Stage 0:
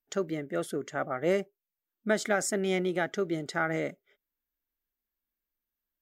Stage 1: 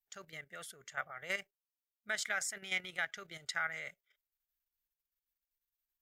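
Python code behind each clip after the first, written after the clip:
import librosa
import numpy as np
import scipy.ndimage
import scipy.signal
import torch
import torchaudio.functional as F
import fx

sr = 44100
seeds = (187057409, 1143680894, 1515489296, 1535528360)

y = fx.tone_stack(x, sr, knobs='10-0-10')
y = fx.level_steps(y, sr, step_db=10)
y = fx.dynamic_eq(y, sr, hz=2100.0, q=0.86, threshold_db=-55.0, ratio=4.0, max_db=7)
y = y * 10.0 ** (1.0 / 20.0)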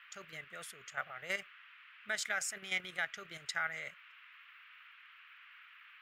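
y = fx.dmg_noise_band(x, sr, seeds[0], low_hz=1200.0, high_hz=2900.0, level_db=-58.0)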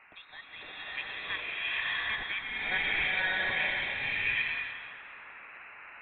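y = fx.freq_invert(x, sr, carrier_hz=3900)
y = fx.rev_bloom(y, sr, seeds[1], attack_ms=770, drr_db=-9.0)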